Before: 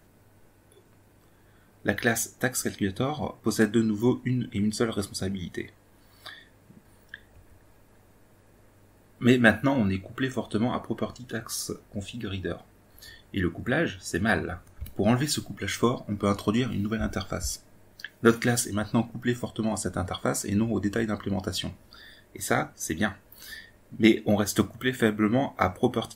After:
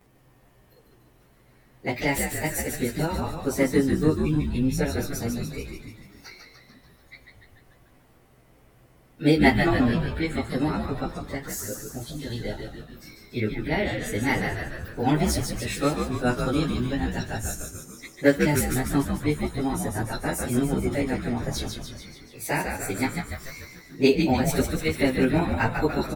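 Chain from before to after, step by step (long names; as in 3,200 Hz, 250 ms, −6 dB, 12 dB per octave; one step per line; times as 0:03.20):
phase-vocoder pitch shift without resampling +3.5 semitones
echo with shifted repeats 146 ms, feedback 60%, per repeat −87 Hz, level −5 dB
level +2.5 dB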